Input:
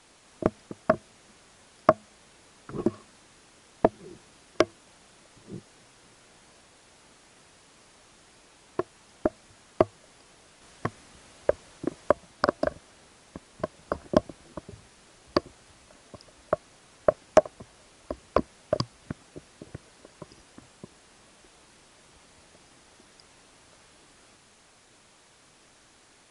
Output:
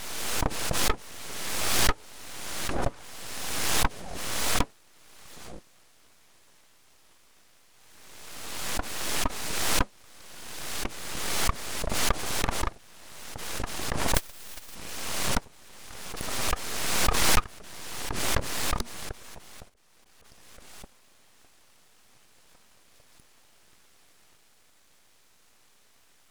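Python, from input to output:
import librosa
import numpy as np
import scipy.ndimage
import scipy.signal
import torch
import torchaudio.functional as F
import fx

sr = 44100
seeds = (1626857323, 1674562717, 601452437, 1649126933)

p1 = fx.spec_flatten(x, sr, power=0.18, at=(14.14, 14.74), fade=0.02)
p2 = 10.0 ** (-11.0 / 20.0) * (np.abs((p1 / 10.0 ** (-11.0 / 20.0) + 3.0) % 4.0 - 2.0) - 1.0)
p3 = p1 + (p2 * 10.0 ** (-4.5 / 20.0))
p4 = fx.auto_swell(p3, sr, attack_ms=286.0, at=(19.68, 20.24), fade=0.02)
p5 = np.abs(p4)
p6 = fx.pre_swell(p5, sr, db_per_s=30.0)
y = p6 * 10.0 ** (-5.5 / 20.0)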